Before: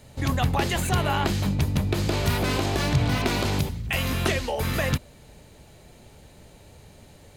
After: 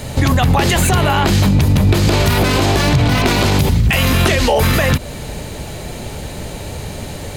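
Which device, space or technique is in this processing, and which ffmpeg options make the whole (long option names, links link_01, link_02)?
loud club master: -af "acompressor=threshold=-26dB:ratio=2.5,asoftclip=type=hard:threshold=-18.5dB,alimiter=level_in=27dB:limit=-1dB:release=50:level=0:latency=1,volume=-4.5dB"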